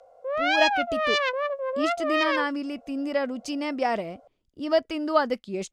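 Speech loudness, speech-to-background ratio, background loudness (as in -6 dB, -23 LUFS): -28.5 LUFS, -3.0 dB, -25.5 LUFS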